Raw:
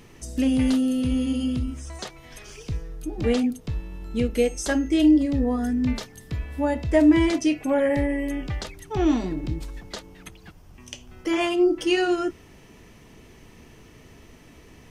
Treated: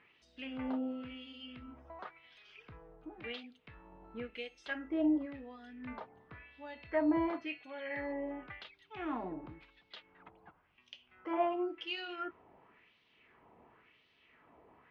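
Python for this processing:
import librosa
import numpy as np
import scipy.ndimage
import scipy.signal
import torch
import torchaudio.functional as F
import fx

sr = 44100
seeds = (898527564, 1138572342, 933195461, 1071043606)

y = fx.low_shelf(x, sr, hz=150.0, db=5.5)
y = fx.notch(y, sr, hz=1800.0, q=21.0)
y = fx.wah_lfo(y, sr, hz=0.94, low_hz=770.0, high_hz=3900.0, q=2.2)
y = fx.dmg_tone(y, sr, hz=4300.0, level_db=-58.0, at=(6.69, 8.11), fade=0.02)
y = fx.air_absorb(y, sr, metres=380.0)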